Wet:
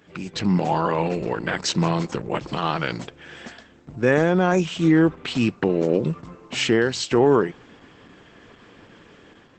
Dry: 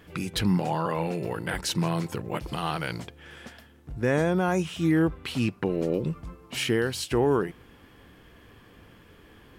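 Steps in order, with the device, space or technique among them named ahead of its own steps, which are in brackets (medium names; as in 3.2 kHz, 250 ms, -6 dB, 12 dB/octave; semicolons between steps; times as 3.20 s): video call (high-pass 140 Hz 12 dB/octave; level rider gain up to 7 dB; Opus 12 kbps 48 kHz)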